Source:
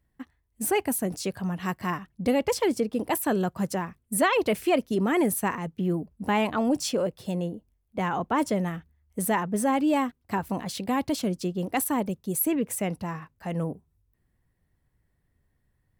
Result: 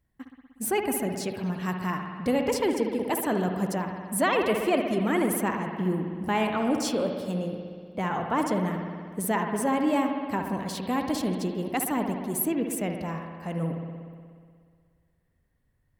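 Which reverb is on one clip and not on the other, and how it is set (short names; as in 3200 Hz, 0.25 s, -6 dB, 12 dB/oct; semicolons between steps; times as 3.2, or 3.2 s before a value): spring tank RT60 2 s, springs 60 ms, chirp 25 ms, DRR 3.5 dB; gain -2 dB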